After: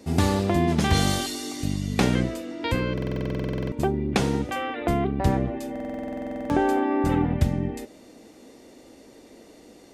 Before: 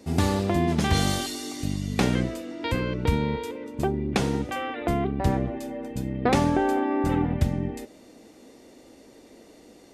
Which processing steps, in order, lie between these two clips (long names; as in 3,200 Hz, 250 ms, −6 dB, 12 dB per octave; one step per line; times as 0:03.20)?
buffer that repeats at 0:02.93/0:05.71, samples 2,048, times 16
level +1.5 dB